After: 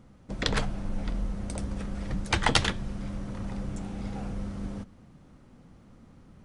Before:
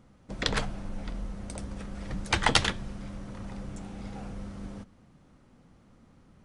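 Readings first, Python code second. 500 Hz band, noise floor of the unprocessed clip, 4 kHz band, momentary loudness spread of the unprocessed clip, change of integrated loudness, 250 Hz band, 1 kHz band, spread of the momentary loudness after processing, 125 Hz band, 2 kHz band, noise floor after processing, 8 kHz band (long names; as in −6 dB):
+1.0 dB, −59 dBFS, −0.5 dB, 17 LU, +0.5 dB, +3.5 dB, 0.0 dB, 12 LU, +3.5 dB, −0.5 dB, −55 dBFS, −0.5 dB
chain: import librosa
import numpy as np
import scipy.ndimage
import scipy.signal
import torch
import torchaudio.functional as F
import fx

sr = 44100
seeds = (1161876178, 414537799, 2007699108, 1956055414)

p1 = fx.rider(x, sr, range_db=3, speed_s=0.5)
p2 = x + (p1 * librosa.db_to_amplitude(0.5))
p3 = fx.low_shelf(p2, sr, hz=410.0, db=3.5)
y = p3 * librosa.db_to_amplitude(-6.0)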